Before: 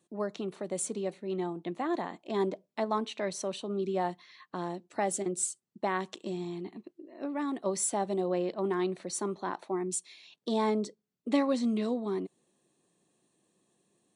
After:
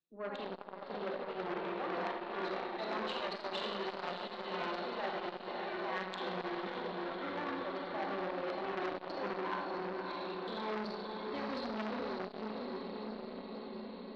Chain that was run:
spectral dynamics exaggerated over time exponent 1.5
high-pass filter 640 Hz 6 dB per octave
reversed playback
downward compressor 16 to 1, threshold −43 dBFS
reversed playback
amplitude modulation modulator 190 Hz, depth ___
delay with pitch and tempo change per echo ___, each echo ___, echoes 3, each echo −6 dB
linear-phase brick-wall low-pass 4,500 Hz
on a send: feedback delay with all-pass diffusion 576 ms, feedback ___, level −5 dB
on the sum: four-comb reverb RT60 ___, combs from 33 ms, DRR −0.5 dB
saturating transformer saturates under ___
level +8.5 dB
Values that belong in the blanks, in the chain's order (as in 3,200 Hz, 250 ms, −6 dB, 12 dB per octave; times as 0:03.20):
15%, 143 ms, +5 semitones, 74%, 1.1 s, 1,800 Hz